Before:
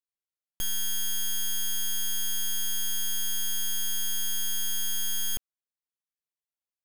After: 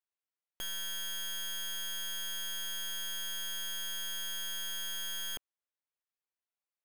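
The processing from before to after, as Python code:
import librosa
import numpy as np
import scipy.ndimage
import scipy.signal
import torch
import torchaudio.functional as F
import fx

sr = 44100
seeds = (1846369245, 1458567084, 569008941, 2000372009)

y = fx.bass_treble(x, sr, bass_db=-14, treble_db=-11)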